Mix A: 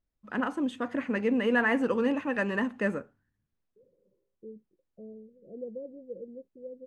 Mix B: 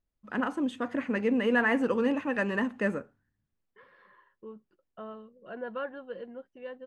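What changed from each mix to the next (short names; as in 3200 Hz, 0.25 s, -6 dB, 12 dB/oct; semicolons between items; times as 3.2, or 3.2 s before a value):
second voice: remove elliptic low-pass 510 Hz, stop band 60 dB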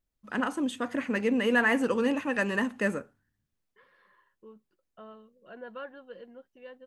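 second voice -6.0 dB; master: remove LPF 2200 Hz 6 dB/oct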